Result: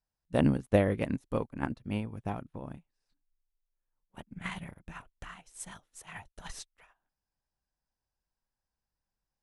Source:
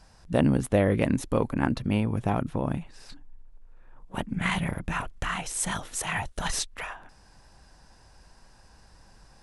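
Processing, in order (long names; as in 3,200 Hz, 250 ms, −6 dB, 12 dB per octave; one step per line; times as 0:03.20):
expander for the loud parts 2.5 to 1, over −42 dBFS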